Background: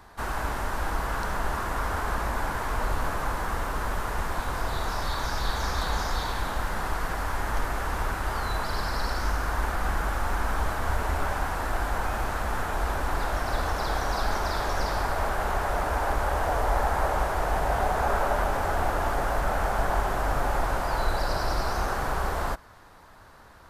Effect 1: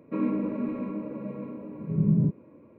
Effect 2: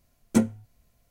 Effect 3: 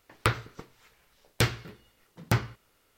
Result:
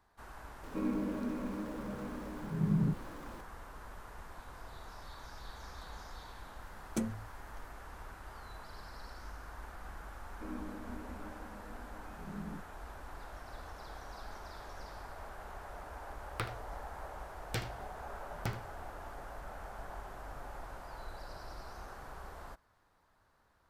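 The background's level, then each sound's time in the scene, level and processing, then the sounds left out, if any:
background -20 dB
0.63 s: add 1 -8 dB + jump at every zero crossing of -40 dBFS
6.62 s: add 2 -1 dB + compression, threshold -29 dBFS
10.29 s: add 1 -16.5 dB + steep high-pass 190 Hz
16.14 s: add 3 -13 dB + delay 77 ms -13.5 dB

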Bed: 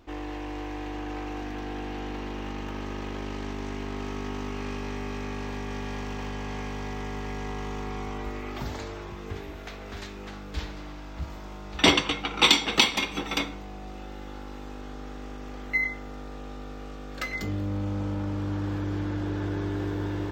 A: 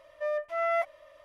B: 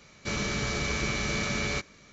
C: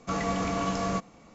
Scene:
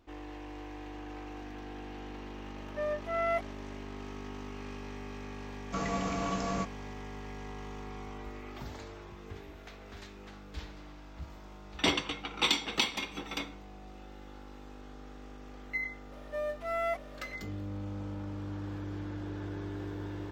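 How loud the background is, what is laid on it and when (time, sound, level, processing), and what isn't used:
bed -9 dB
2.56 s: add A -3 dB
5.65 s: add C -4.5 dB + rattle on loud lows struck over -32 dBFS, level -37 dBFS
16.12 s: add A -5.5 dB + companding laws mixed up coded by mu
not used: B

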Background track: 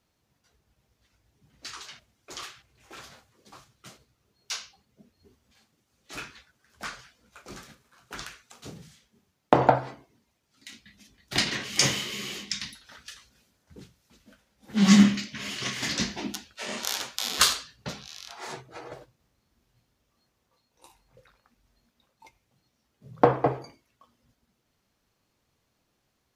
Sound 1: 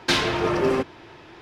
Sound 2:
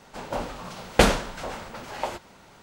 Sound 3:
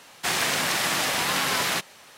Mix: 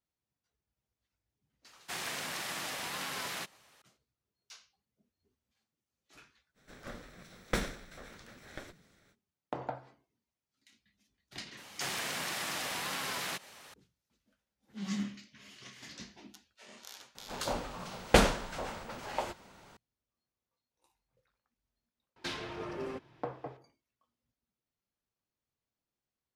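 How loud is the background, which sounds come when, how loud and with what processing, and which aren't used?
background track -19.5 dB
1.65 s: add 3 -14 dB
6.54 s: add 2 -14 dB, fades 0.05 s + comb filter that takes the minimum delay 0.52 ms
11.57 s: add 3 -4 dB + compression 2:1, threshold -36 dBFS
17.15 s: add 2 -5 dB
22.16 s: add 1 -18 dB

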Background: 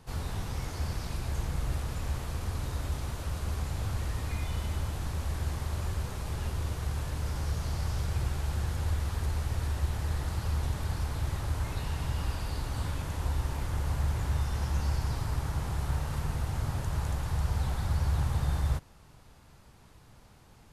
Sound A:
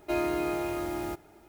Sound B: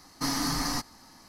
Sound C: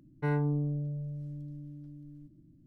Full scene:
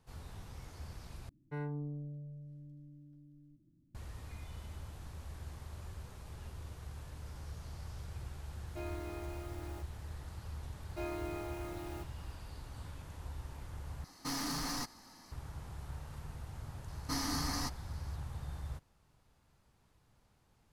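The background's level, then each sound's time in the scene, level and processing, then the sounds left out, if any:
background -14 dB
1.29 s: replace with C -10.5 dB
8.67 s: add A -15.5 dB
10.88 s: add A -12 dB
14.04 s: replace with B -4 dB + saturation -30 dBFS
16.88 s: add B -7.5 dB

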